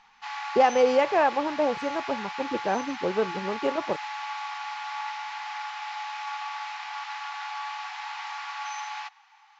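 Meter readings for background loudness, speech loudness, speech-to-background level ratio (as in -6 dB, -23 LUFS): -34.5 LUFS, -26.5 LUFS, 8.0 dB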